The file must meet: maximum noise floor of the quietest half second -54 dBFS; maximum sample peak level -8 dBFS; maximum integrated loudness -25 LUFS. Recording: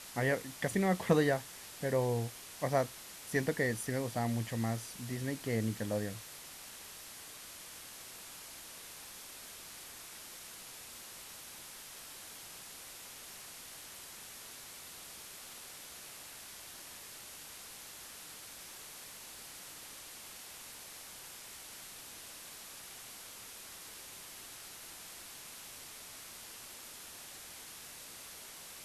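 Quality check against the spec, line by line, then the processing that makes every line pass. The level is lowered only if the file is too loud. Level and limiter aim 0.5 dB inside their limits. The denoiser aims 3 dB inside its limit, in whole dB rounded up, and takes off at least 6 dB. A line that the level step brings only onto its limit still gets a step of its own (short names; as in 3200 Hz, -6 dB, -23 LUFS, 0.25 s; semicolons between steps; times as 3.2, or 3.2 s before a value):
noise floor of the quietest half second -50 dBFS: fail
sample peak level -13.0 dBFS: OK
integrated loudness -40.5 LUFS: OK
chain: denoiser 7 dB, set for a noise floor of -50 dBFS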